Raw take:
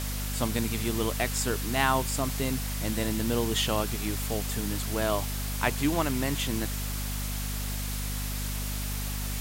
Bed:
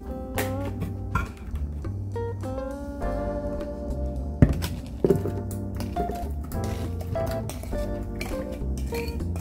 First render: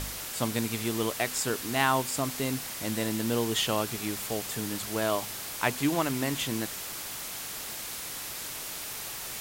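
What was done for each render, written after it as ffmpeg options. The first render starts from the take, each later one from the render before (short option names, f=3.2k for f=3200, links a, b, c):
-af "bandreject=f=50:t=h:w=4,bandreject=f=100:t=h:w=4,bandreject=f=150:t=h:w=4,bandreject=f=200:t=h:w=4,bandreject=f=250:t=h:w=4"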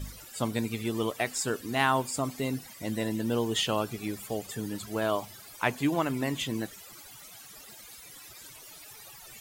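-af "afftdn=nr=17:nf=-38"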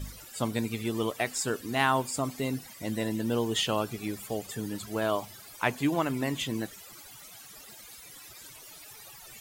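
-af anull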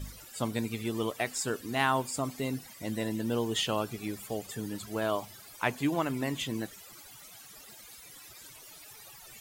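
-af "volume=-2dB"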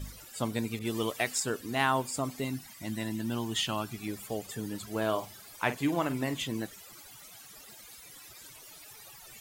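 -filter_complex "[0:a]asettb=1/sr,asplit=3[a][b][c];[a]atrim=end=0.794[d];[b]atrim=start=0.79:end=1.4,asetpts=PTS-STARTPTS,afade=t=in:d=0.004:c=qsin,afade=t=out:st=0.606:d=0.004:c=qsin,adynamicequalizer=threshold=0.00501:dfrequency=1600:dqfactor=0.7:tfrequency=1600:tqfactor=0.7:attack=5:release=100:ratio=0.375:range=2:mode=boostabove:tftype=highshelf[e];[c]atrim=start=1.396[f];[d][e]acrossfade=d=0.004:c1=hsin:c2=qsin[g];[g][f]acrossfade=d=0.004:c1=qsin:c2=hsin,asettb=1/sr,asplit=3[h][i][j];[h]atrim=end=2.444[k];[i]atrim=start=2.44:end=4.08,asetpts=PTS-STARTPTS,afade=t=in:d=0.004:c=qsin,afade=t=out:st=1.636:d=0.004:c=qsin,equalizer=f=480:w=3.1:g=-14.5[l];[j]atrim=start=4.076[m];[k][l]acrossfade=d=0.004:c1=hsin:c2=qsin[n];[n][m]acrossfade=d=0.004:c1=qsin:c2=hsin,asettb=1/sr,asplit=3[o][p][q];[o]atrim=end=4.894[r];[p]atrim=start=4.89:end=6.34,asetpts=PTS-STARTPTS,afade=t=in:d=0.004:c=qsin,afade=t=out:st=1.446:d=0.004:c=qsin,asplit=2[s][t];[t]adelay=46,volume=-12dB[u];[s][u]amix=inputs=2:normalize=0,atrim=end_sample=63945[v];[q]atrim=start=6.336[w];[r][v]acrossfade=d=0.004:c1=hsin:c2=qsin[x];[x][w]acrossfade=d=0.004:c1=qsin:c2=hsin"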